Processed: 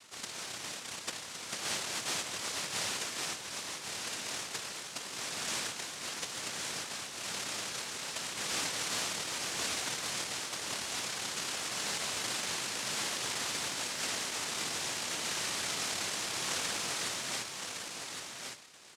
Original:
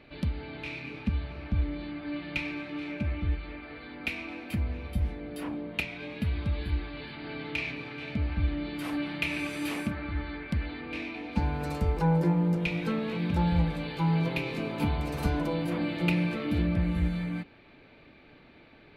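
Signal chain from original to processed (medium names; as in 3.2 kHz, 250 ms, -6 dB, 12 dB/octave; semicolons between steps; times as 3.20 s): high-pass 220 Hz 24 dB/octave; peaking EQ 400 Hz +9 dB 2.5 oct; hum notches 50/100/150/200/250/300/350 Hz; peak limiter -23 dBFS, peak gain reduction 10 dB; noise-vocoded speech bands 1; delay 1113 ms -5.5 dB; trim -6.5 dB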